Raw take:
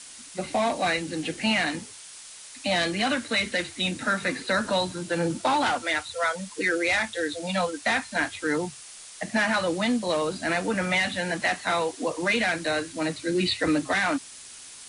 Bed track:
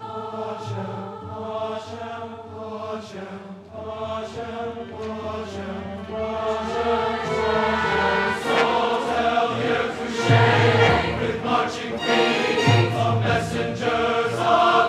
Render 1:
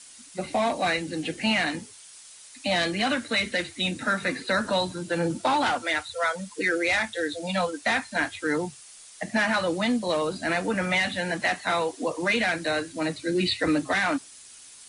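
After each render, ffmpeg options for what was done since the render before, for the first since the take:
ffmpeg -i in.wav -af "afftdn=noise_reduction=6:noise_floor=-45" out.wav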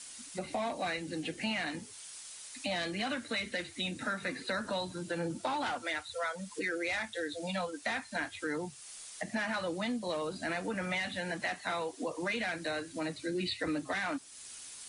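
ffmpeg -i in.wav -af "acompressor=threshold=-40dB:ratio=2" out.wav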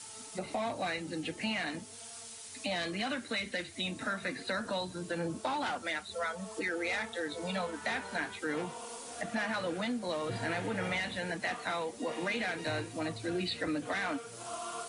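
ffmpeg -i in.wav -i bed.wav -filter_complex "[1:a]volume=-24.5dB[link_01];[0:a][link_01]amix=inputs=2:normalize=0" out.wav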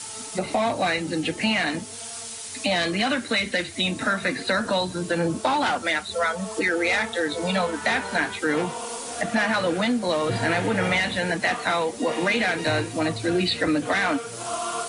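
ffmpeg -i in.wav -af "volume=11.5dB" out.wav

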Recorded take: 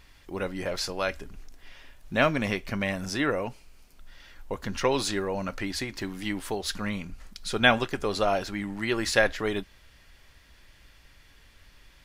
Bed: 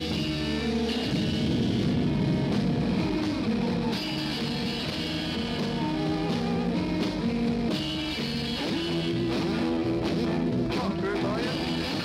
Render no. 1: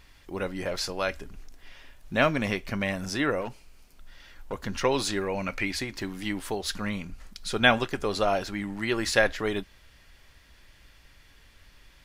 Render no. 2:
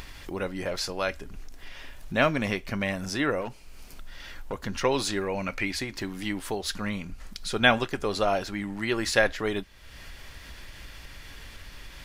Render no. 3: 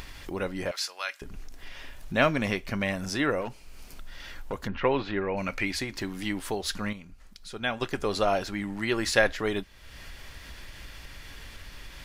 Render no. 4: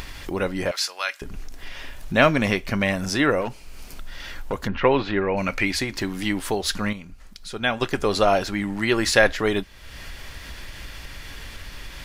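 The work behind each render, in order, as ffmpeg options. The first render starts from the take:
ffmpeg -i in.wav -filter_complex "[0:a]asettb=1/sr,asplit=3[link_01][link_02][link_03];[link_01]atrim=end=3.414[link_04];[link_02]atrim=start=3.41:end=4.53,asetpts=PTS-STARTPTS,afade=type=in:duration=0.004:curve=qsin,afade=type=out:start_time=1.116:duration=0.004:curve=qsin,aeval=exprs='clip(val(0),-1,0.0158)':channel_layout=same[link_05];[link_03]atrim=start=4.526[link_06];[link_04][link_05]acrossfade=duration=0.004:curve1=hsin:curve2=qsin[link_07];[link_07][link_06]acrossfade=duration=0.004:curve1=qsin:curve2=hsin,asettb=1/sr,asplit=3[link_08][link_09][link_10];[link_08]atrim=end=5.214[link_11];[link_09]atrim=start=5.21:end=5.77,asetpts=PTS-STARTPTS,afade=type=in:duration=0.004:curve=qsin,afade=type=out:start_time=0.556:duration=0.004:curve=qsin,equalizer=frequency=2300:width=4.3:gain=13[link_12];[link_10]atrim=start=5.766[link_13];[link_11][link_12]acrossfade=duration=0.004:curve1=hsin:curve2=qsin[link_14];[link_14][link_13]acrossfade=duration=0.004:curve1=qsin:curve2=hsin" out.wav
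ffmpeg -i in.wav -af "acompressor=mode=upward:threshold=-31dB:ratio=2.5" out.wav
ffmpeg -i in.wav -filter_complex "[0:a]asettb=1/sr,asplit=3[link_01][link_02][link_03];[link_01]atrim=end=0.714[link_04];[link_02]atrim=start=0.71:end=1.22,asetpts=PTS-STARTPTS,afade=type=in:duration=0.004:curve=qsin,afade=type=out:start_time=0.506:duration=0.004:curve=qsin,highpass=1300[link_05];[link_03]atrim=start=1.216[link_06];[link_04][link_05]acrossfade=duration=0.004:curve1=hsin:curve2=qsin[link_07];[link_07][link_06]acrossfade=duration=0.004:curve1=qsin:curve2=hsin,asplit=3[link_08][link_09][link_10];[link_08]afade=type=out:start_time=4.67:duration=0.02[link_11];[link_09]lowpass=frequency=2900:width=0.5412,lowpass=frequency=2900:width=1.3066,afade=type=in:start_time=4.67:duration=0.02,afade=type=out:start_time=5.36:duration=0.02[link_12];[link_10]afade=type=in:start_time=5.36:duration=0.02[link_13];[link_11][link_12][link_13]amix=inputs=3:normalize=0,asplit=3[link_14][link_15][link_16];[link_14]atrim=end=6.93,asetpts=PTS-STARTPTS,afade=type=out:start_time=6.77:duration=0.16:curve=log:silence=0.316228[link_17];[link_15]atrim=start=6.93:end=7.81,asetpts=PTS-STARTPTS,volume=-10dB[link_18];[link_16]atrim=start=7.81,asetpts=PTS-STARTPTS,afade=type=in:duration=0.16:curve=log:silence=0.316228[link_19];[link_17][link_18][link_19]concat=n=3:v=0:a=1" out.wav
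ffmpeg -i in.wav -af "volume=6.5dB,alimiter=limit=-2dB:level=0:latency=1" out.wav

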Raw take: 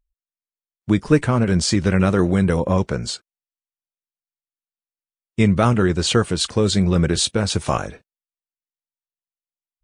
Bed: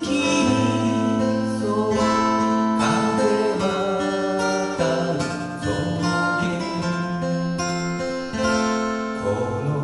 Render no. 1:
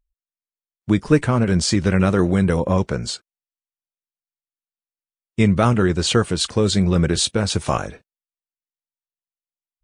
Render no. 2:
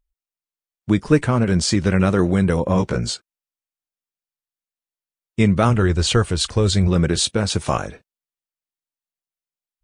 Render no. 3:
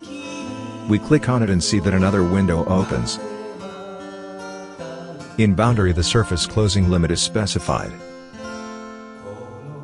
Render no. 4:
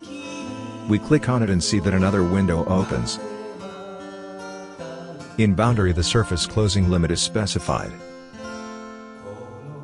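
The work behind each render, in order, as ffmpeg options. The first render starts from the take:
ffmpeg -i in.wav -af anull out.wav
ffmpeg -i in.wav -filter_complex "[0:a]asettb=1/sr,asplit=3[link_01][link_02][link_03];[link_01]atrim=end=2.734[link_04];[link_02]atrim=start=2.73:end=3.14,asetpts=PTS-STARTPTS,afade=type=in:duration=0.004:curve=qsin,afade=type=out:start_time=0.406:duration=0.004:curve=qsin,asplit=2[link_05][link_06];[link_06]adelay=17,volume=-3dB[link_07];[link_05][link_07]amix=inputs=2:normalize=0,atrim=end_sample=18081[link_08];[link_03]atrim=start=3.136[link_09];[link_04][link_08]acrossfade=duration=0.004:curve1=hsin:curve2=qsin[link_10];[link_10][link_09]acrossfade=duration=0.004:curve1=qsin:curve2=hsin,asplit=3[link_11][link_12][link_13];[link_11]afade=type=out:start_time=5.69:duration=0.02[link_14];[link_12]asubboost=boost=4.5:cutoff=88,afade=type=in:start_time=5.69:duration=0.02,afade=type=out:start_time=6.87:duration=0.02[link_15];[link_13]afade=type=in:start_time=6.87:duration=0.02[link_16];[link_14][link_15][link_16]amix=inputs=3:normalize=0" out.wav
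ffmpeg -i in.wav -i bed.wav -filter_complex "[1:a]volume=-11.5dB[link_01];[0:a][link_01]amix=inputs=2:normalize=0" out.wav
ffmpeg -i in.wav -af "volume=-2dB" out.wav

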